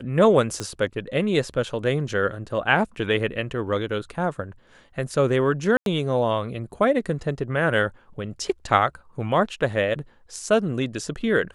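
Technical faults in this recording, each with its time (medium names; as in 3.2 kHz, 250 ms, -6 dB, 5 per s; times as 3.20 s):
0.60 s: pop -14 dBFS
5.77–5.86 s: dropout 92 ms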